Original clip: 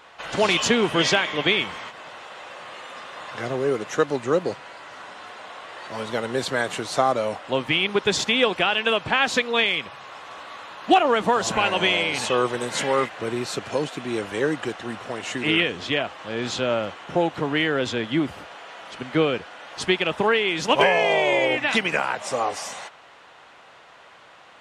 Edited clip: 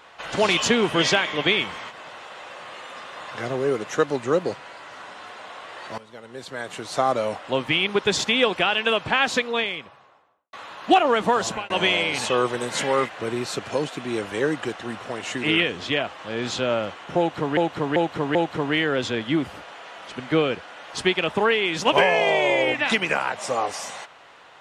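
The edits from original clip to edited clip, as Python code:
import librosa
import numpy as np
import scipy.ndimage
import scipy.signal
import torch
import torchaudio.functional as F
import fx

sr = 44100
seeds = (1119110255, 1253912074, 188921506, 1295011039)

y = fx.studio_fade_out(x, sr, start_s=9.21, length_s=1.32)
y = fx.edit(y, sr, fx.fade_in_from(start_s=5.98, length_s=1.15, curve='qua', floor_db=-17.0),
    fx.fade_out_span(start_s=11.42, length_s=0.28),
    fx.repeat(start_s=17.18, length_s=0.39, count=4), tone=tone)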